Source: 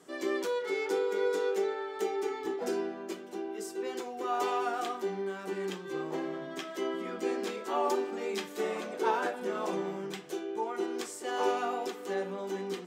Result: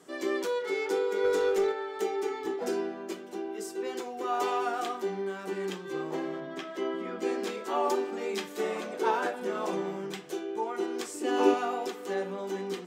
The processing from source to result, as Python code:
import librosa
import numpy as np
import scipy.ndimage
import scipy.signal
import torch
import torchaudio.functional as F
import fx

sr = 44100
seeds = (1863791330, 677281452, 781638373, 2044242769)

y = fx.leveller(x, sr, passes=1, at=(1.24, 1.72))
y = fx.high_shelf(y, sr, hz=5400.0, db=-11.5, at=(6.4, 7.22))
y = fx.small_body(y, sr, hz=(290.0, 2600.0), ring_ms=45, db=16, at=(11.14, 11.54))
y = y * librosa.db_to_amplitude(1.5)